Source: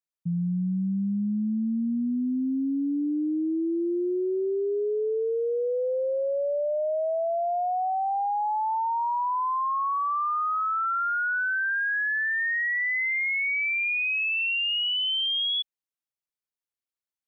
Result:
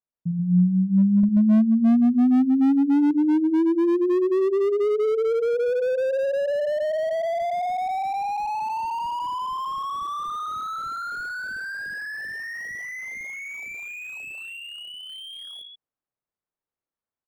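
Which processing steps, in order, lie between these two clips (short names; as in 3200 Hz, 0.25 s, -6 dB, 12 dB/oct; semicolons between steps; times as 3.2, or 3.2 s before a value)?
1.23–3.11 low shelf 150 Hz +7 dB; 14.57–15.1 resonator 85 Hz, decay 0.78 s, harmonics all, mix 30%; on a send: loudspeakers at several distances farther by 19 m -9 dB, 46 m -7 dB; on the sum: AGC gain up to 4.5 dB; LPF 1200 Hz 12 dB/oct; slew limiter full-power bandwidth 32 Hz; gain +2.5 dB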